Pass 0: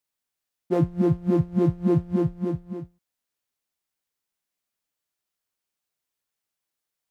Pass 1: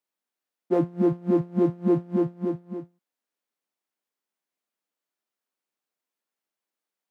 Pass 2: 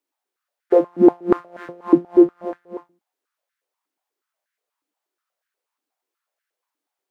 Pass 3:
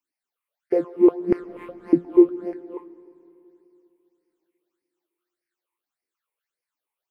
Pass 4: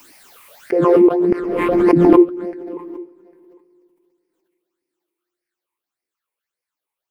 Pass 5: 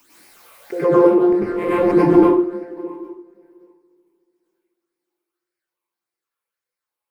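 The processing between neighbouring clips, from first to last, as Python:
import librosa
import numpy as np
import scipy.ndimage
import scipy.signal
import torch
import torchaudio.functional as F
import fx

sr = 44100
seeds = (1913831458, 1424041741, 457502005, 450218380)

y1 = scipy.signal.sosfilt(scipy.signal.butter(4, 200.0, 'highpass', fs=sr, output='sos'), x)
y1 = fx.high_shelf(y1, sr, hz=2300.0, db=-8.5)
y1 = y1 * librosa.db_to_amplitude(1.5)
y2 = fx.filter_held_highpass(y1, sr, hz=8.3, low_hz=290.0, high_hz=1600.0)
y2 = y2 * librosa.db_to_amplitude(2.5)
y3 = fx.phaser_stages(y2, sr, stages=8, low_hz=190.0, high_hz=1100.0, hz=1.7, feedback_pct=45)
y3 = fx.rev_freeverb(y3, sr, rt60_s=3.0, hf_ratio=0.95, predelay_ms=80, drr_db=17.0)
y3 = y3 * librosa.db_to_amplitude(-2.0)
y4 = y3 + 10.0 ** (-21.5 / 20.0) * np.pad(y3, (int(802 * sr / 1000.0), 0))[:len(y3)]
y4 = fx.pre_swell(y4, sr, db_per_s=26.0)
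y4 = y4 * librosa.db_to_amplitude(2.0)
y5 = fx.rev_plate(y4, sr, seeds[0], rt60_s=0.55, hf_ratio=0.75, predelay_ms=85, drr_db=-8.0)
y5 = y5 * librosa.db_to_amplitude(-9.5)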